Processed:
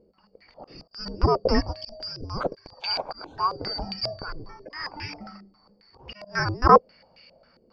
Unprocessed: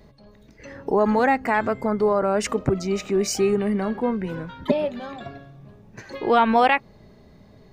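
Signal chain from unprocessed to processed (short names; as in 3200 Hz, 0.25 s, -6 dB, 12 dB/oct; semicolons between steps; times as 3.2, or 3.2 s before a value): four-band scrambler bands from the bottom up 2341; auto swell 0.185 s; low shelf 100 Hz +7.5 dB; stepped low-pass 7.4 Hz 390–2500 Hz; gain +4 dB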